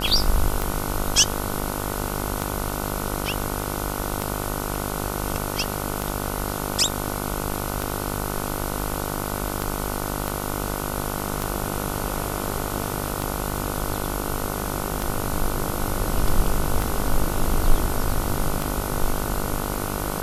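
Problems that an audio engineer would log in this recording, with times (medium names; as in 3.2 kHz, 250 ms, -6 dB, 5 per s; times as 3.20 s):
buzz 50 Hz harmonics 30 -29 dBFS
tick 33 1/3 rpm
10.28 s: pop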